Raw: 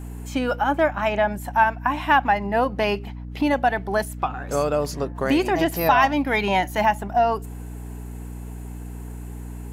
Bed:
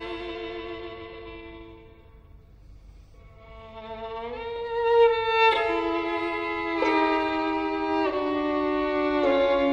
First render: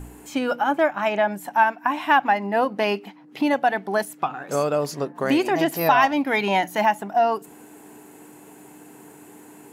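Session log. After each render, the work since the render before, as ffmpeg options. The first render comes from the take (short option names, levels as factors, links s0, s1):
-af "bandreject=f=60:t=h:w=4,bandreject=f=120:t=h:w=4,bandreject=f=180:t=h:w=4,bandreject=f=240:t=h:w=4"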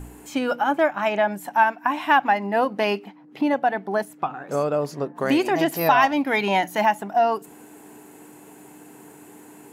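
-filter_complex "[0:a]asettb=1/sr,asplit=3[s0][s1][s2];[s0]atrim=end=3.044[s3];[s1]atrim=start=3.04:end=5.17,asetpts=PTS-STARTPTS,afade=t=in:d=0.004:c=qsin,afade=t=out:st=2.126:d=0.004:c=qsin,highshelf=f=2200:g=-8.5[s4];[s2]atrim=start=5.166[s5];[s3][s4]acrossfade=d=0.004:c1=hsin:c2=qsin[s6];[s6][s5]acrossfade=d=0.004:c1=qsin:c2=hsin"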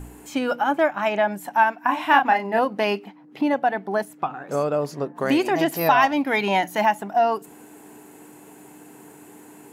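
-filter_complex "[0:a]asettb=1/sr,asplit=3[s0][s1][s2];[s0]atrim=end=1.854[s3];[s1]atrim=start=1.85:end=2.59,asetpts=PTS-STARTPTS,afade=t=in:d=0.004:c=qsin,afade=t=out:st=0.736:d=0.004:c=qsin,asplit=2[s4][s5];[s5]adelay=32,volume=0.562[s6];[s4][s6]amix=inputs=2:normalize=0,atrim=end_sample=32634[s7];[s2]atrim=start=2.586[s8];[s3][s7]acrossfade=d=0.004:c1=hsin:c2=qsin[s9];[s9][s8]acrossfade=d=0.004:c1=qsin:c2=hsin"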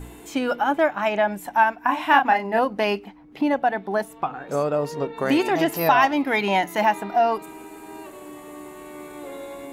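-filter_complex "[1:a]volume=0.178[s0];[0:a][s0]amix=inputs=2:normalize=0"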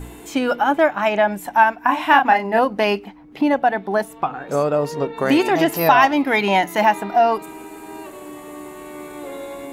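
-af "volume=1.58,alimiter=limit=0.891:level=0:latency=1"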